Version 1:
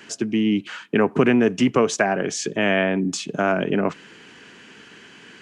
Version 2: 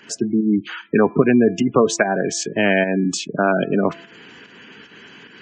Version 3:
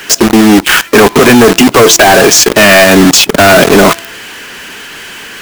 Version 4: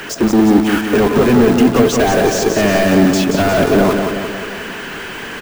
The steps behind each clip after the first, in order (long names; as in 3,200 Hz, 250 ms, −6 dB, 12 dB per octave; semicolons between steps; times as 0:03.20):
fake sidechain pumping 148 BPM, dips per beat 1, −8 dB, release 168 ms; gate on every frequency bin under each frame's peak −20 dB strong; hum removal 337.3 Hz, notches 7; level +3.5 dB
mid-hump overdrive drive 27 dB, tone 6,700 Hz, clips at −1.5 dBFS; log-companded quantiser 2 bits; level −1 dB
de-essing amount 75%; hard clipping −11 dBFS, distortion −12 dB; repeating echo 178 ms, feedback 56%, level −5.5 dB; level +3.5 dB